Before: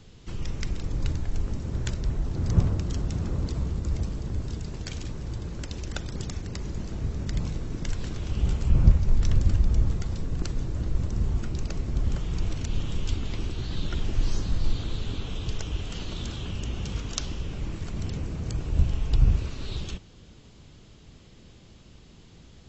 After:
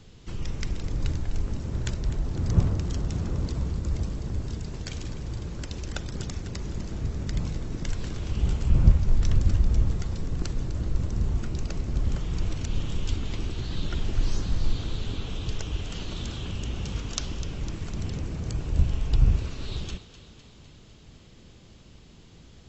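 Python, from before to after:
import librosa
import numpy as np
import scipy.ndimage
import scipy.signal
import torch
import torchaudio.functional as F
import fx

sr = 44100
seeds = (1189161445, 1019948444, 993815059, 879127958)

y = fx.echo_thinned(x, sr, ms=252, feedback_pct=65, hz=420.0, wet_db=-13)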